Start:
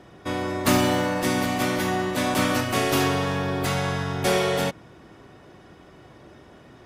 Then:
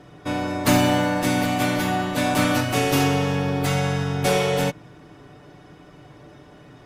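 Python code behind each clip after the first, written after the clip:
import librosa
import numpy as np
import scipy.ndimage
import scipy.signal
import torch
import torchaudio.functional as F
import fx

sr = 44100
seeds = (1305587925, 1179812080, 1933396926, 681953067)

y = fx.low_shelf(x, sr, hz=210.0, db=3.5)
y = y + 0.5 * np.pad(y, (int(6.8 * sr / 1000.0), 0))[:len(y)]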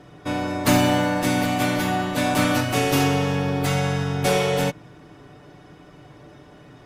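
y = x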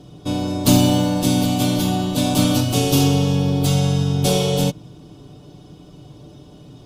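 y = fx.curve_eq(x, sr, hz=(200.0, 1100.0, 1900.0, 3200.0), db=(0, -11, -21, -1))
y = y * librosa.db_to_amplitude(6.5)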